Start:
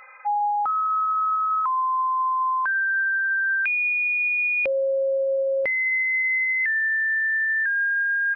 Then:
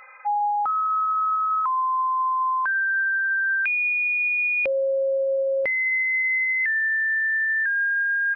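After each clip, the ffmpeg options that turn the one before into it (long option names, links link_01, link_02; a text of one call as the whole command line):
ffmpeg -i in.wav -af anull out.wav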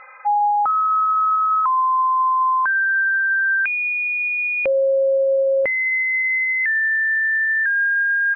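ffmpeg -i in.wav -af "lowpass=2100,volume=5.5dB" out.wav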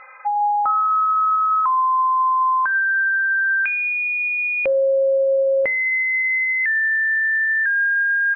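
ffmpeg -i in.wav -af "bandreject=frequency=83.03:width_type=h:width=4,bandreject=frequency=166.06:width_type=h:width=4,bandreject=frequency=249.09:width_type=h:width=4,bandreject=frequency=332.12:width_type=h:width=4,bandreject=frequency=415.15:width_type=h:width=4,bandreject=frequency=498.18:width_type=h:width=4,bandreject=frequency=581.21:width_type=h:width=4,bandreject=frequency=664.24:width_type=h:width=4,bandreject=frequency=747.27:width_type=h:width=4,bandreject=frequency=830.3:width_type=h:width=4,bandreject=frequency=913.33:width_type=h:width=4,bandreject=frequency=996.36:width_type=h:width=4,bandreject=frequency=1079.39:width_type=h:width=4,bandreject=frequency=1162.42:width_type=h:width=4,bandreject=frequency=1245.45:width_type=h:width=4,bandreject=frequency=1328.48:width_type=h:width=4,bandreject=frequency=1411.51:width_type=h:width=4,bandreject=frequency=1494.54:width_type=h:width=4,bandreject=frequency=1577.57:width_type=h:width=4,bandreject=frequency=1660.6:width_type=h:width=4,bandreject=frequency=1743.63:width_type=h:width=4,bandreject=frequency=1826.66:width_type=h:width=4" out.wav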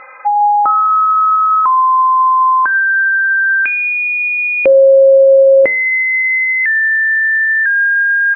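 ffmpeg -i in.wav -af "equalizer=frequency=320:width_type=o:width=1.5:gain=10,volume=6dB" out.wav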